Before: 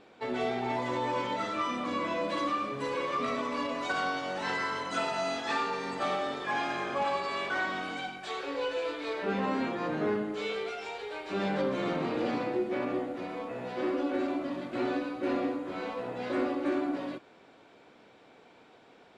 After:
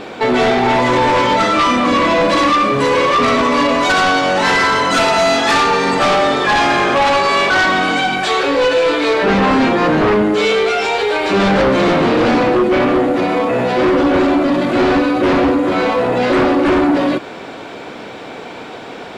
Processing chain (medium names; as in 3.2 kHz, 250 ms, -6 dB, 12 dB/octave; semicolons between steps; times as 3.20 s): sine folder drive 8 dB, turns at -19 dBFS; loudness maximiser +23 dB; trim -8 dB